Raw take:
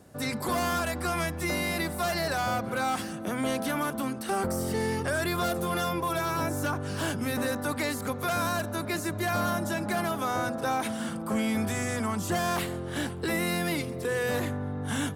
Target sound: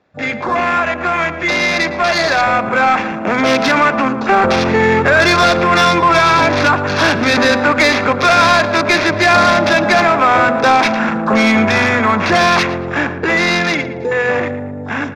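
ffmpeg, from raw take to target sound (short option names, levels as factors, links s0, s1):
-filter_complex "[0:a]acrusher=samples=5:mix=1:aa=0.000001,highshelf=f=5600:g=9,dynaudnorm=f=440:g=13:m=2.24,equalizer=f=2700:t=o:w=0.8:g=4,adynamicsmooth=sensitivity=6.5:basefreq=3100,afwtdn=0.0224,aresample=16000,aresample=44100,asplit=2[s0][s1];[s1]highpass=f=720:p=1,volume=4.47,asoftclip=type=tanh:threshold=0.335[s2];[s0][s2]amix=inputs=2:normalize=0,lowpass=f=6300:p=1,volume=0.501,bandreject=f=3000:w=6.2,asplit=2[s3][s4];[s4]adelay=114,lowpass=f=2300:p=1,volume=0.282,asplit=2[s5][s6];[s6]adelay=114,lowpass=f=2300:p=1,volume=0.49,asplit=2[s7][s8];[s8]adelay=114,lowpass=f=2300:p=1,volume=0.49,asplit=2[s9][s10];[s10]adelay=114,lowpass=f=2300:p=1,volume=0.49,asplit=2[s11][s12];[s12]adelay=114,lowpass=f=2300:p=1,volume=0.49[s13];[s3][s5][s7][s9][s11][s13]amix=inputs=6:normalize=0,volume=2.37"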